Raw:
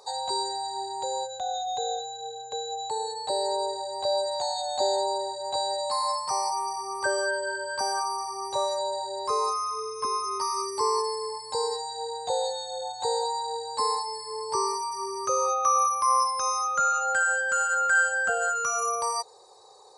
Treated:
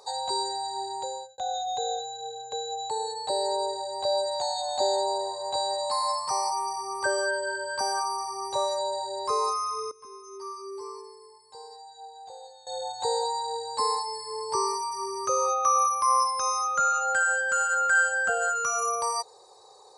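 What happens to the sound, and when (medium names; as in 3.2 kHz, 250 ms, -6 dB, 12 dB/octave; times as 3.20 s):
0.95–1.38 s: fade out
4.34–6.53 s: frequency-shifting echo 274 ms, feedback 32%, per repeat +100 Hz, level -19 dB
9.91–12.67 s: feedback comb 390 Hz, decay 0.62 s, mix 90%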